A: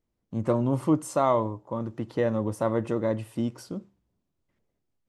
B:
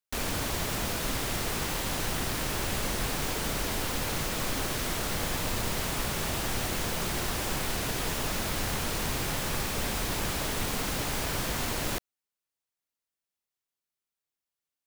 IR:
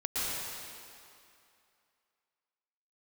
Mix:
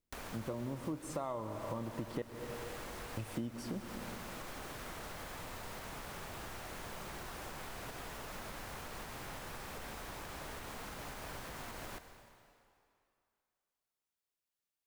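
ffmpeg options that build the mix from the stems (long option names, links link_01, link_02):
-filter_complex "[0:a]dynaudnorm=framelen=260:gausssize=9:maxgain=11.5dB,volume=-9.5dB,asplit=3[link_01][link_02][link_03];[link_01]atrim=end=2.22,asetpts=PTS-STARTPTS,afade=type=out:start_time=2.216:duration=0.004:curve=hsin[link_04];[link_02]atrim=start=2.22:end=3.17,asetpts=PTS-STARTPTS,volume=0[link_05];[link_03]atrim=start=3.17,asetpts=PTS-STARTPTS,afade=type=in:duration=0.004:curve=hsin[link_06];[link_04][link_05][link_06]concat=n=3:v=0:a=1,asplit=2[link_07][link_08];[link_08]volume=-17dB[link_09];[1:a]alimiter=level_in=0.5dB:limit=-24dB:level=0:latency=1:release=380,volume=-0.5dB,acrossover=split=530|2000|7800[link_10][link_11][link_12][link_13];[link_10]acompressor=threshold=-46dB:ratio=4[link_14];[link_11]acompressor=threshold=-44dB:ratio=4[link_15];[link_12]acompressor=threshold=-54dB:ratio=4[link_16];[link_13]acompressor=threshold=-54dB:ratio=4[link_17];[link_14][link_15][link_16][link_17]amix=inputs=4:normalize=0,volume=-4.5dB,asplit=2[link_18][link_19];[link_19]volume=-16dB[link_20];[2:a]atrim=start_sample=2205[link_21];[link_09][link_20]amix=inputs=2:normalize=0[link_22];[link_22][link_21]afir=irnorm=-1:irlink=0[link_23];[link_07][link_18][link_23]amix=inputs=3:normalize=0,acompressor=threshold=-37dB:ratio=6"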